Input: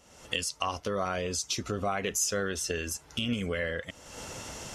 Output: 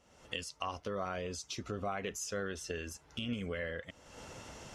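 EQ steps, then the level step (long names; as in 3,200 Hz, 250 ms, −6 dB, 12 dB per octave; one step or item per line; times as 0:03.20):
high-shelf EQ 5,900 Hz −10.5 dB
−6.5 dB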